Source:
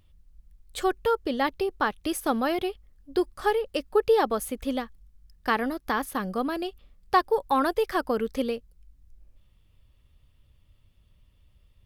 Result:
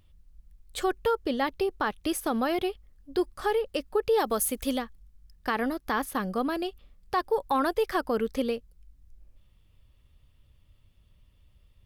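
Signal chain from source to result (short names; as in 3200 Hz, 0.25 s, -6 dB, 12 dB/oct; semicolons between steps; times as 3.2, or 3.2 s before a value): 4.18–4.77 high shelf 6000 Hz -> 3600 Hz +11.5 dB; limiter -17 dBFS, peak gain reduction 7.5 dB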